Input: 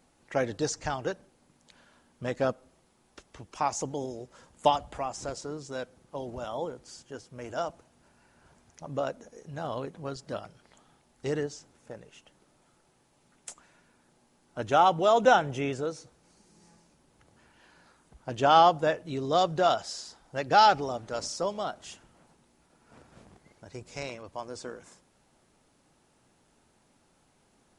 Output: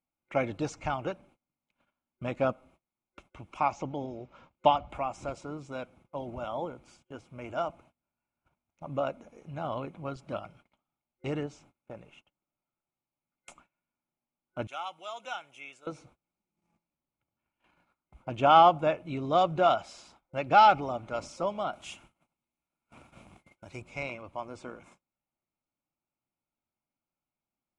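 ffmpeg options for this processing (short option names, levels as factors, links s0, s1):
-filter_complex "[0:a]asettb=1/sr,asplit=3[s0][s1][s2];[s0]atrim=end=3.724[s3];[s1]atrim=start=3.72:end=4.9,asetpts=PTS-STARTPTS,afade=t=in:d=0.004:c=qsin,afade=t=out:st=1.176:d=0.004:c=qsin,lowpass=f=5600:w=0.5412,lowpass=f=5600:w=1.3066[s4];[s2]atrim=start=4.896[s5];[s3][s4]acrossfade=d=0.004:c1=hsin:c2=qsin[s6];[s6][s5]acrossfade=d=0.004:c1=qsin:c2=hsin,asettb=1/sr,asplit=3[s7][s8][s9];[s7]atrim=end=14.674[s10];[s8]atrim=start=14.67:end=15.87,asetpts=PTS-STARTPTS,afade=t=in:d=0.004:c=qsin,afade=t=out:st=1.196:d=0.004:c=qsin,aderivative[s11];[s9]atrim=start=15.866[s12];[s10][s11]acrossfade=d=0.004:c1=hsin:c2=qsin[s13];[s13][s12]acrossfade=d=0.004:c1=qsin:c2=hsin,asettb=1/sr,asplit=3[s14][s15][s16];[s14]atrim=end=21.734[s17];[s15]atrim=start=21.73:end=23.82,asetpts=PTS-STARTPTS,afade=t=in:d=0.004:c=qsin,afade=t=out:st=2.086:d=0.004:c=qsin,highshelf=f=3400:g=12[s18];[s16]atrim=start=23.816[s19];[s17][s18]acrossfade=d=0.004:c1=hsin:c2=qsin[s20];[s20][s19]acrossfade=d=0.004:c1=qsin:c2=hsin,highshelf=f=2900:t=q:w=1.5:g=-10.5,agate=range=0.0447:threshold=0.00158:ratio=16:detection=peak,superequalizer=7b=0.501:11b=0.316:12b=1.78:13b=1.78"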